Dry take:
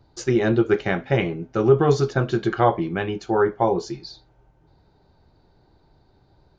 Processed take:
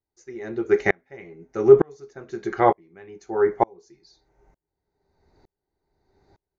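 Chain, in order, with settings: graphic EQ with 31 bands 125 Hz -8 dB, 400 Hz +8 dB, 800 Hz +3 dB, 2 kHz +11 dB, 3.15 kHz -9 dB, 6.3 kHz +11 dB; sawtooth tremolo in dB swelling 1.1 Hz, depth 36 dB; trim +1 dB

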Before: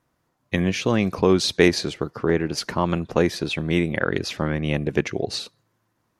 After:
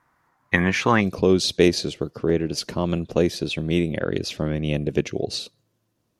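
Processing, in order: high-order bell 1.3 kHz +10.5 dB, from 1.00 s -8 dB

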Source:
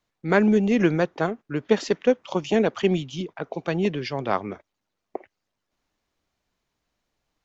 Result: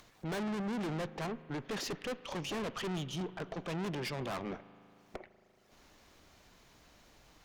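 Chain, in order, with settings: valve stage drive 35 dB, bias 0.5; upward compressor, threshold -45 dBFS; spring tank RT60 2.9 s, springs 38 ms, chirp 45 ms, DRR 16 dB

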